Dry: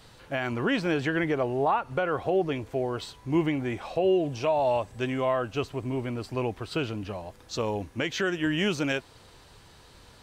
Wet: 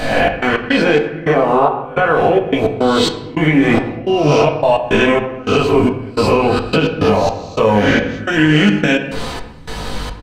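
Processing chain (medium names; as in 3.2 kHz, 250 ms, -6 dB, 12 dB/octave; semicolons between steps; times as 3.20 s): reverse spectral sustain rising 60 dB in 0.91 s; treble shelf 4.6 kHz -6 dB; hum notches 60/120/180/240/300/360/420/480 Hz; comb 4 ms, depth 34%; compression 6:1, threshold -35 dBFS, peak gain reduction 16 dB; chorus voices 2, 0.81 Hz, delay 19 ms, depth 1.4 ms; trance gate "xx.x.xx..xxx..x" 107 bpm -24 dB; on a send at -5.5 dB: distance through air 80 m + reverberation RT60 0.95 s, pre-delay 5 ms; on the sum: loudness maximiser +29 dB; attacks held to a fixed rise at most 600 dB/s; trim -1 dB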